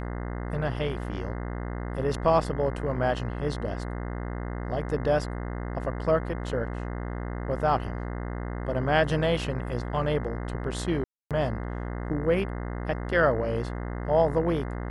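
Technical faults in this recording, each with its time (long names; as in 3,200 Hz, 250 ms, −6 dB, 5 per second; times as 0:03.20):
mains buzz 60 Hz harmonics 35 −33 dBFS
0:11.04–0:11.31: drop-out 267 ms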